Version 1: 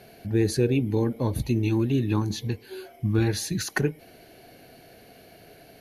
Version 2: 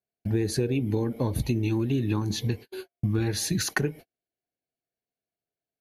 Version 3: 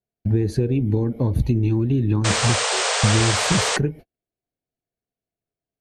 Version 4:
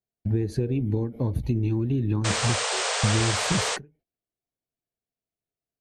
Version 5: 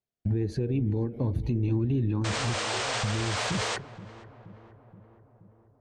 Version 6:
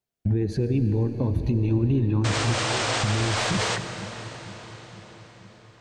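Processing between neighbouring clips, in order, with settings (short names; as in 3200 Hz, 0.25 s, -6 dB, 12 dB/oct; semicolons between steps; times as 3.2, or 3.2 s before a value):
gate -37 dBFS, range -49 dB; compressor, threshold -26 dBFS, peak gain reduction 9.5 dB; gain +4 dB
painted sound noise, 2.24–3.77, 410–9100 Hz -18 dBFS; tilt -2.5 dB/oct
ending taper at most 200 dB/s; gain -5 dB
limiter -19 dBFS, peak gain reduction 8.5 dB; air absorption 58 m; darkening echo 0.475 s, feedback 66%, low-pass 1200 Hz, level -16 dB
reverb RT60 5.5 s, pre-delay 40 ms, DRR 9 dB; gain +4 dB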